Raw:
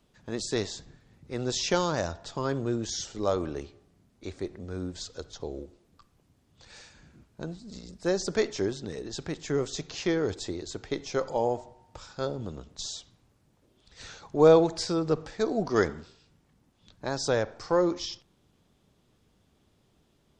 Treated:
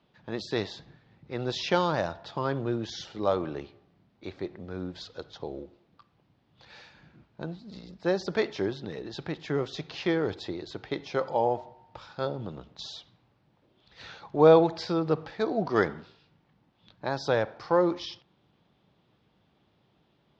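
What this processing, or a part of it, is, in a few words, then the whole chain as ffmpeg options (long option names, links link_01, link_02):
guitar cabinet: -af "highpass=80,equalizer=frequency=80:width_type=q:width=4:gain=-9,equalizer=frequency=250:width_type=q:width=4:gain=-4,equalizer=frequency=420:width_type=q:width=4:gain=-3,equalizer=frequency=850:width_type=q:width=4:gain=3,lowpass=frequency=4200:width=0.5412,lowpass=frequency=4200:width=1.3066,volume=1.5dB"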